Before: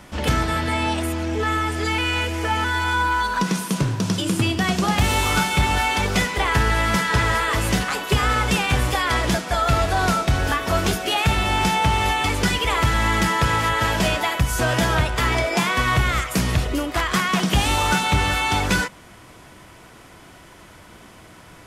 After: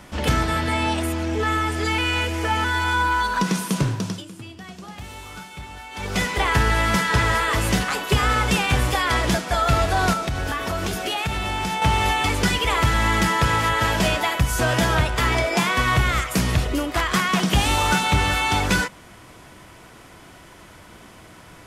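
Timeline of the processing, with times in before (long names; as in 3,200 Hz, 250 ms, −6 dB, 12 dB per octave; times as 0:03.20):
0:03.87–0:06.31: duck −18 dB, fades 0.40 s linear
0:10.13–0:11.82: downward compressor, threshold −21 dBFS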